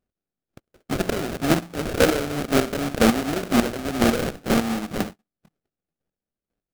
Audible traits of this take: a buzz of ramps at a fixed pitch in blocks of 16 samples; chopped level 2 Hz, depth 65%, duty 20%; aliases and images of a low sample rate 1 kHz, jitter 20%

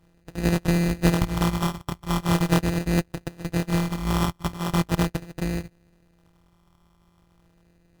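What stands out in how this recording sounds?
a buzz of ramps at a fixed pitch in blocks of 256 samples; phasing stages 8, 0.4 Hz, lowest notch 530–1100 Hz; aliases and images of a low sample rate 2.2 kHz, jitter 0%; MP3

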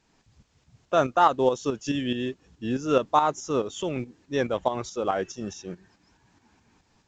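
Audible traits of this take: a quantiser's noise floor 12-bit, dither triangular; tremolo saw up 4.7 Hz, depth 60%; A-law

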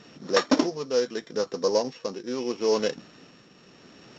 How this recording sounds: a buzz of ramps at a fixed pitch in blocks of 8 samples; tremolo triangle 0.78 Hz, depth 55%; A-law

